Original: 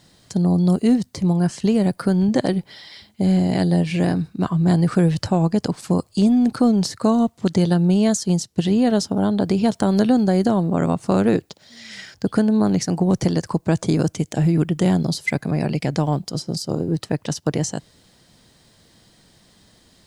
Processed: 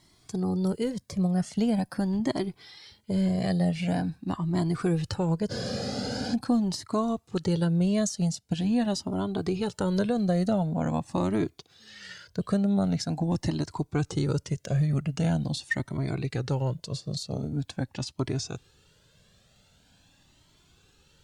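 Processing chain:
gliding playback speed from 105% → 84%
frozen spectrum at 0:05.53, 0.79 s
flanger whose copies keep moving one way rising 0.44 Hz
level −3 dB

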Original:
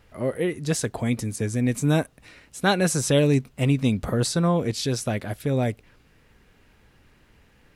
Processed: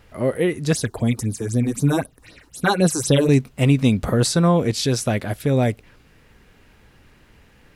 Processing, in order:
0:00.73–0:03.29: all-pass phaser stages 6, 3.9 Hz, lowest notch 140–2,400 Hz
level +5 dB

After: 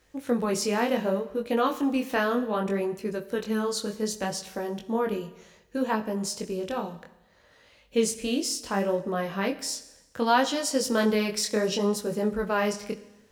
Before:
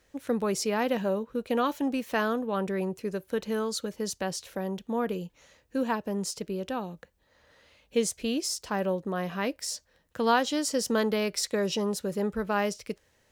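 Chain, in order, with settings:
chorus effect 0.66 Hz, delay 18 ms, depth 7 ms
four-comb reverb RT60 1 s, combs from 29 ms, DRR 13.5 dB
level +5 dB

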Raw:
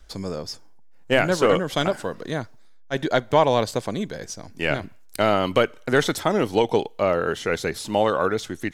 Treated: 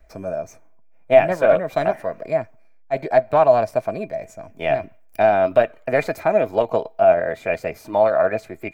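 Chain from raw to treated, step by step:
flat-topped bell 5,100 Hz −11 dB 2.3 octaves
formants moved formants +3 semitones
hollow resonant body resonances 650/2,400 Hz, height 17 dB, ringing for 70 ms
level −3 dB

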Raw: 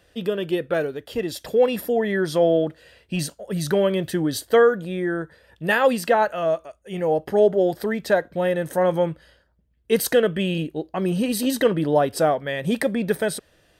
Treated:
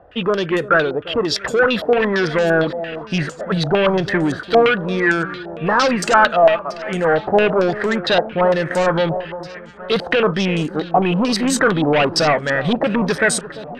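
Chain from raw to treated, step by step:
parametric band 1,300 Hz +8.5 dB 0.73 octaves
soft clipping −21 dBFS, distortion −7 dB
delay that swaps between a low-pass and a high-pass 344 ms, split 1,100 Hz, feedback 73%, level −14 dB
low-pass on a step sequencer 8.8 Hz 760–7,300 Hz
level +7.5 dB

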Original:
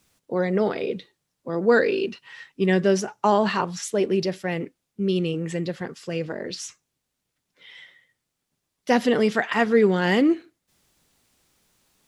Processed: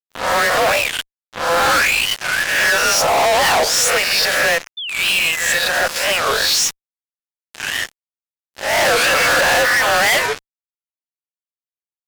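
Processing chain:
peak hold with a rise ahead of every peak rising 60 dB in 0.69 s
frequency shifter −160 Hz
Chebyshev high-pass with heavy ripple 500 Hz, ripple 3 dB
fuzz pedal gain 45 dB, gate −44 dBFS
sound drawn into the spectrogram fall, 0:04.78–0:05.88, 1,400–3,100 Hz −26 dBFS
wow of a warped record 45 rpm, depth 250 cents

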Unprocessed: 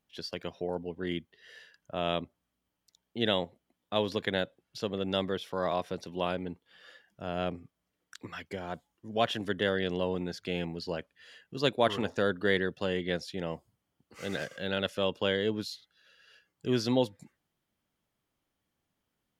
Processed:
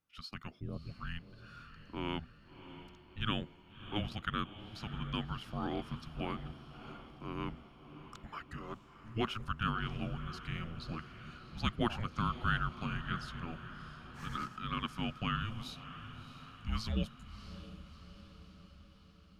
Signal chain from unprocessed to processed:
parametric band 1,600 Hz +8.5 dB 0.49 octaves
feedback delay with all-pass diffusion 654 ms, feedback 59%, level −12.5 dB
frequency shifter −330 Hz
level −7.5 dB

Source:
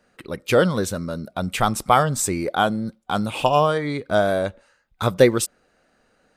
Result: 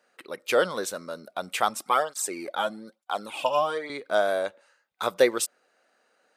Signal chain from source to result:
high-pass filter 450 Hz 12 dB per octave
0:01.69–0:03.90: through-zero flanger with one copy inverted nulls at 1.1 Hz, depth 2.9 ms
level −3 dB

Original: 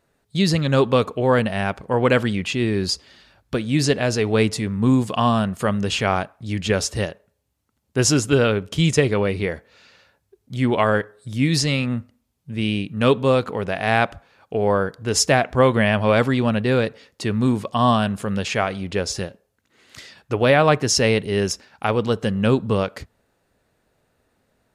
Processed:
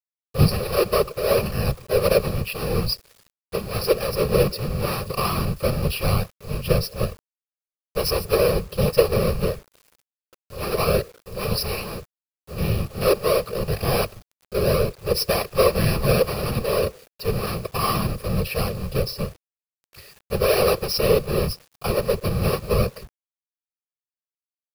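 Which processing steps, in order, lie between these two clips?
each half-wave held at its own peak
EQ curve with evenly spaced ripples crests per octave 0.86, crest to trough 17 dB
random phases in short frames
phaser with its sweep stopped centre 1,400 Hz, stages 8
bit reduction 7 bits
level −6.5 dB

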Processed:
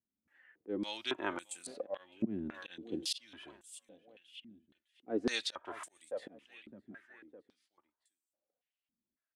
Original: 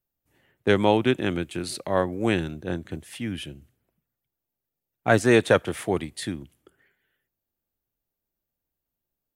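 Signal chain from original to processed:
0:02.54–0:03.18: high shelf with overshoot 2,200 Hz +13.5 dB, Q 3
repeating echo 610 ms, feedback 47%, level −21.5 dB
flanger 0.87 Hz, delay 2.9 ms, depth 1.3 ms, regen −19%
volume swells 354 ms
band-pass on a step sequencer 3.6 Hz 210–8,000 Hz
level +9.5 dB

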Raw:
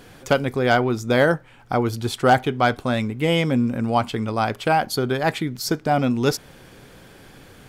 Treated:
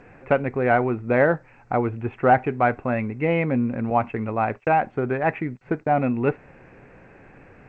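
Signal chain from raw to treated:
0:03.90–0:05.94: noise gate −29 dBFS, range −53 dB
Chebyshev low-pass with heavy ripple 2,700 Hz, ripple 3 dB
G.722 64 kbit/s 16,000 Hz

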